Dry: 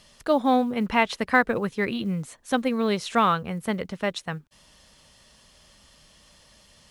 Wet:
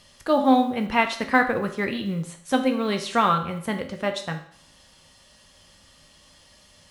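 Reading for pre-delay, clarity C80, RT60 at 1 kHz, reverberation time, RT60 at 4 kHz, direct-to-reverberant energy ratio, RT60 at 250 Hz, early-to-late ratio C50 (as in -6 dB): 4 ms, 14.0 dB, 0.60 s, 0.60 s, 0.60 s, 4.5 dB, 0.60 s, 10.0 dB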